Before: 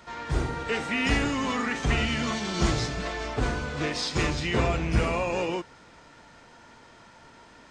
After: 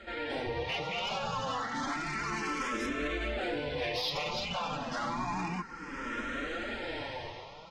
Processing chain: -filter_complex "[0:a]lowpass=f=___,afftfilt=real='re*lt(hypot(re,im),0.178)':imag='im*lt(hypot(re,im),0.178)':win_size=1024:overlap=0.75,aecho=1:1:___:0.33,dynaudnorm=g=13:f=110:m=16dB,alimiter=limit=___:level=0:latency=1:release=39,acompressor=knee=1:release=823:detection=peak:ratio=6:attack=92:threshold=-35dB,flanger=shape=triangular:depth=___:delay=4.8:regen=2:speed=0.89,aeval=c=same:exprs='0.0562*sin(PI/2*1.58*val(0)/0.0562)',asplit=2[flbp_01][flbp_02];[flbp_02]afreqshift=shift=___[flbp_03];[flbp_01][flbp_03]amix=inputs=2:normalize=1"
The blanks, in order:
4400, 3.7, -10dB, 3.9, 0.3